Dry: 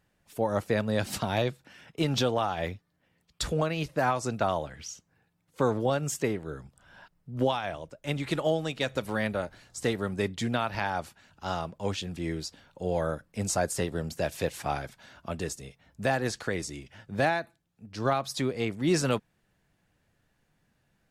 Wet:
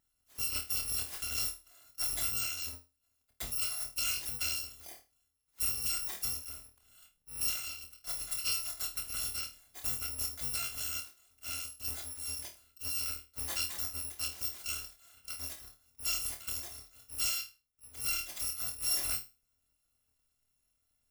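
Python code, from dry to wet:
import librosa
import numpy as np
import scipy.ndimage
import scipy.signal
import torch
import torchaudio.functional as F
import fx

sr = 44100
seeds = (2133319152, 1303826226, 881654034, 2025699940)

y = fx.bit_reversed(x, sr, seeds[0], block=256)
y = fx.room_flutter(y, sr, wall_m=4.5, rt60_s=0.28)
y = y * 10.0 ** (-8.5 / 20.0)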